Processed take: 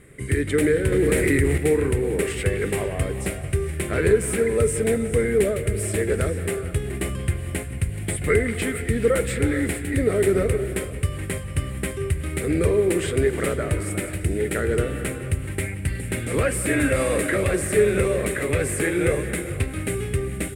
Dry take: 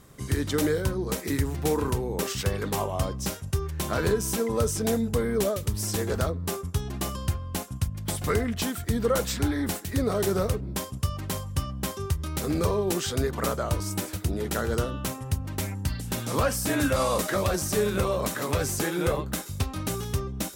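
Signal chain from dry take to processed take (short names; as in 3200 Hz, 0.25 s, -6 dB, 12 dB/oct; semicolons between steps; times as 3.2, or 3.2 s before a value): EQ curve 150 Hz 0 dB, 220 Hz -3 dB, 420 Hz +5 dB, 970 Hz -13 dB, 2100 Hz +9 dB, 3100 Hz -4 dB, 6000 Hz -18 dB, 8700 Hz +4 dB, 15000 Hz -15 dB; speakerphone echo 0.18 s, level -15 dB; non-linear reverb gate 0.49 s rising, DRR 9.5 dB; 0.92–1.58 fast leveller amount 70%; gain +3.5 dB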